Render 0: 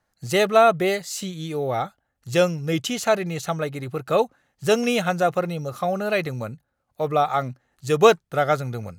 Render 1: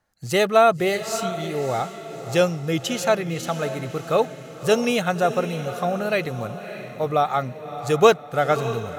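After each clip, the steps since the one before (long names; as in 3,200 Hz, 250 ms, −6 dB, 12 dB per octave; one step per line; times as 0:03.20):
feedback delay with all-pass diffusion 604 ms, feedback 46%, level −11.5 dB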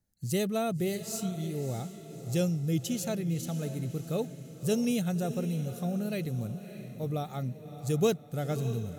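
drawn EQ curve 210 Hz 0 dB, 1,100 Hz −22 dB, 11,000 Hz 0 dB
level −1.5 dB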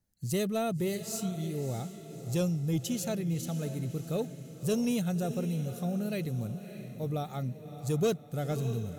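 soft clipping −19.5 dBFS, distortion −22 dB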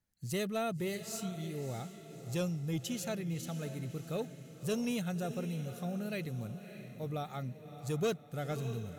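parametric band 1,800 Hz +7 dB 2.3 octaves
level −6 dB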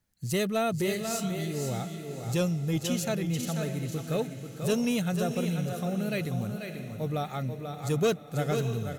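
single-tap delay 489 ms −7 dB
level +7 dB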